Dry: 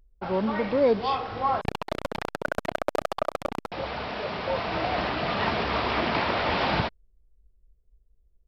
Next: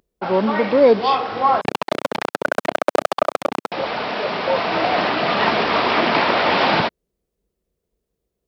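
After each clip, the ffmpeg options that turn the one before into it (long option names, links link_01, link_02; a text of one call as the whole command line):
ffmpeg -i in.wav -af "highpass=200,volume=9dB" out.wav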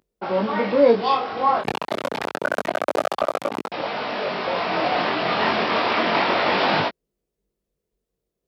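ffmpeg -i in.wav -af "flanger=delay=19.5:depth=3.6:speed=0.28,equalizer=frequency=61:width_type=o:width=0.44:gain=-9.5" out.wav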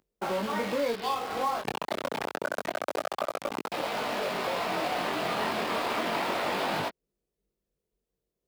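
ffmpeg -i in.wav -filter_complex "[0:a]acrossover=split=1300|3500[link_01][link_02][link_03];[link_01]acompressor=threshold=-28dB:ratio=4[link_04];[link_02]acompressor=threshold=-37dB:ratio=4[link_05];[link_03]acompressor=threshold=-43dB:ratio=4[link_06];[link_04][link_05][link_06]amix=inputs=3:normalize=0,asplit=2[link_07][link_08];[link_08]acrusher=bits=4:mix=0:aa=0.000001,volume=-8dB[link_09];[link_07][link_09]amix=inputs=2:normalize=0,volume=-4.5dB" out.wav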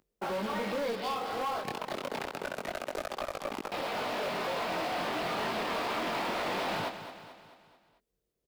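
ffmpeg -i in.wav -filter_complex "[0:a]asoftclip=type=tanh:threshold=-30dB,asplit=2[link_01][link_02];[link_02]aecho=0:1:219|438|657|876|1095:0.282|0.144|0.0733|0.0374|0.0191[link_03];[link_01][link_03]amix=inputs=2:normalize=0,volume=1dB" out.wav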